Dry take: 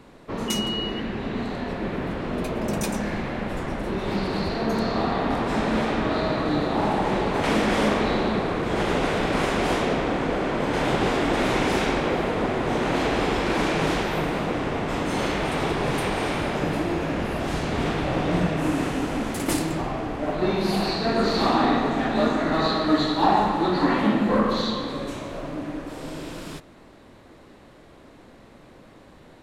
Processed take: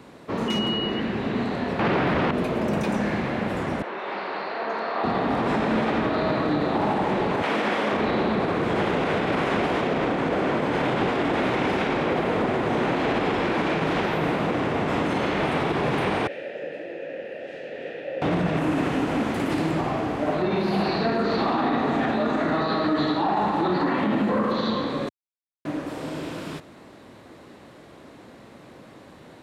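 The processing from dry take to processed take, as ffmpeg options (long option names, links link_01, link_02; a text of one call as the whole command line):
ffmpeg -i in.wav -filter_complex "[0:a]asettb=1/sr,asplit=3[link_01][link_02][link_03];[link_01]atrim=end=1.794[link_04];[link_02]atrim=start=1.79:end=2.31,asetpts=PTS-STARTPTS,afade=type=in:duration=0.004:curve=qsin,afade=type=out:start_time=0.516:duration=0.004:curve=qsin,aeval=exprs='0.158*sin(PI/2*3.98*val(0)/0.158)':channel_layout=same[link_05];[link_03]atrim=start=2.306[link_06];[link_04][link_05]acrossfade=duration=0.004:curve1=hsin:curve2=qsin[link_07];[link_07][link_06]acrossfade=duration=0.004:curve1=qsin:curve2=hsin,asettb=1/sr,asplit=3[link_08][link_09][link_10];[link_08]atrim=end=3.824[link_11];[link_09]atrim=start=3.82:end=5.04,asetpts=PTS-STARTPTS,afade=type=in:duration=0.004:curve=qsin,afade=type=out:start_time=1.216:duration=0.004:curve=qsin,highpass=660,lowpass=2500[link_12];[link_10]atrim=start=5.036[link_13];[link_11][link_12]acrossfade=duration=0.004:curve1=hsin:curve2=qsin[link_14];[link_14][link_13]acrossfade=duration=0.004:curve1=qsin:curve2=hsin,asettb=1/sr,asplit=3[link_15][link_16][link_17];[link_15]atrim=end=7.424[link_18];[link_16]atrim=start=7.42:end=7.93,asetpts=PTS-STARTPTS,afade=type=in:duration=0.004:curve=qsin,afade=type=out:start_time=0.506:duration=0.004:curve=qsin,highpass=frequency=450:poles=1[link_19];[link_17]atrim=start=7.926[link_20];[link_18][link_19]acrossfade=duration=0.004:curve1=hsin:curve2=qsin[link_21];[link_21][link_20]acrossfade=duration=0.004:curve1=qsin:curve2=hsin,asettb=1/sr,asplit=3[link_22][link_23][link_24];[link_22]atrim=end=16.274[link_25];[link_23]atrim=start=16.27:end=18.22,asetpts=PTS-STARTPTS,afade=type=in:duration=0.004:curve=qsin,afade=type=out:start_time=1.946:duration=0.004:curve=qsin,asplit=3[link_26][link_27][link_28];[link_26]bandpass=frequency=530:width_type=q:width=8,volume=0dB[link_29];[link_27]bandpass=frequency=1840:width_type=q:width=8,volume=-6dB[link_30];[link_28]bandpass=frequency=2480:width_type=q:width=8,volume=-9dB[link_31];[link_29][link_30][link_31]amix=inputs=3:normalize=0[link_32];[link_24]atrim=start=18.216[link_33];[link_25][link_32]acrossfade=duration=0.004:curve1=hsin:curve2=qsin[link_34];[link_34][link_33]acrossfade=duration=0.004:curve1=qsin:curve2=hsin,asplit=3[link_35][link_36][link_37];[link_35]atrim=end=25.09,asetpts=PTS-STARTPTS,afade=type=out:start_time=25.086:duration=0.004:curve=hsin[link_38];[link_36]atrim=start=25.09:end=25.65,asetpts=PTS-STARTPTS,volume=0[link_39];[link_37]atrim=start=25.65,asetpts=PTS-STARTPTS,afade=type=in:duration=0.004:curve=hsin[link_40];[link_38][link_39][link_40]concat=n=3:v=0:a=1,acrossover=split=3700[link_41][link_42];[link_42]acompressor=threshold=-52dB:ratio=4:attack=1:release=60[link_43];[link_41][link_43]amix=inputs=2:normalize=0,highpass=90,alimiter=limit=-18dB:level=0:latency=1:release=46,volume=3dB" out.wav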